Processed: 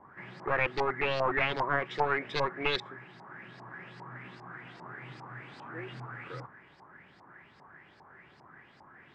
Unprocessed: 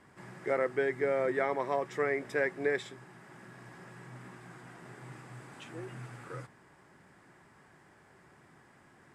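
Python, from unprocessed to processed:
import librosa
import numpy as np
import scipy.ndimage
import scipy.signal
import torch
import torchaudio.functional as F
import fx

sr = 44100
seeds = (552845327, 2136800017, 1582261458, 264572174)

y = np.minimum(x, 2.0 * 10.0 ** (-31.0 / 20.0) - x)
y = fx.filter_lfo_lowpass(y, sr, shape='saw_up', hz=2.5, low_hz=830.0, high_hz=5000.0, q=5.3)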